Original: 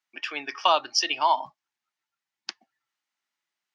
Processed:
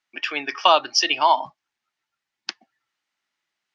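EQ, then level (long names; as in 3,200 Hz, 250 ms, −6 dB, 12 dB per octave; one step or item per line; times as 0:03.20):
high-frequency loss of the air 57 metres
parametric band 970 Hz −2.5 dB
+7.0 dB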